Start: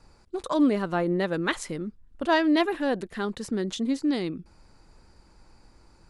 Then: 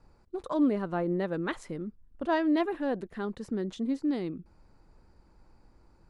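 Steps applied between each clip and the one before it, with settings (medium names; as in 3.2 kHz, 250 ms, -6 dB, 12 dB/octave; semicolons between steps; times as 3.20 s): treble shelf 2.1 kHz -11.5 dB; trim -3.5 dB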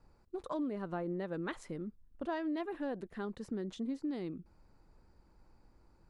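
compression 6:1, threshold -29 dBFS, peak gain reduction 8.5 dB; trim -4.5 dB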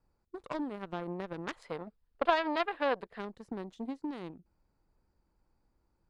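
Chebyshev shaper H 3 -12 dB, 7 -38 dB, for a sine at -25.5 dBFS; time-frequency box 1.57–3.19 s, 420–5200 Hz +11 dB; trim +6 dB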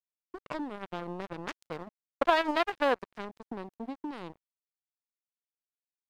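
in parallel at 0 dB: level held to a coarse grid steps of 16 dB; on the sum: crossover distortion -43.5 dBFS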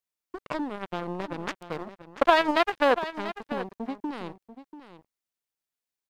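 delay 689 ms -13 dB; trim +5 dB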